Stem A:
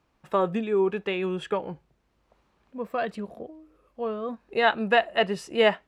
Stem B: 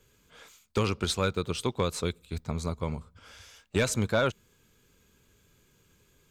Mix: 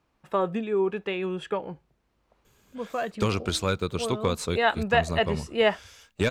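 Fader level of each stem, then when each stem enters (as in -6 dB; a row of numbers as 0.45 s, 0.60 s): -1.5 dB, +1.5 dB; 0.00 s, 2.45 s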